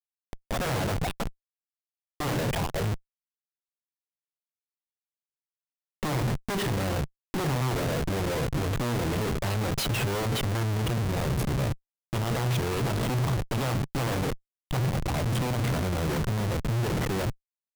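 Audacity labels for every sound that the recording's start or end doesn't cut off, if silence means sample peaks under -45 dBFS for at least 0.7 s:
2.200000	2.970000	sound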